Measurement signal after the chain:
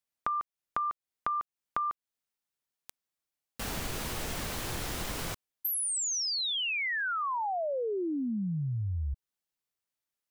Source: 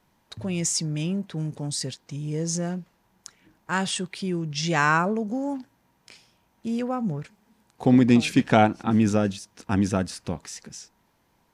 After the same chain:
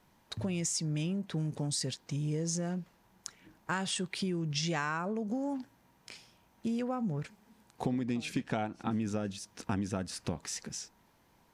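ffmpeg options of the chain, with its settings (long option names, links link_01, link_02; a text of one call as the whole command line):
ffmpeg -i in.wav -af "acompressor=threshold=-30dB:ratio=10" out.wav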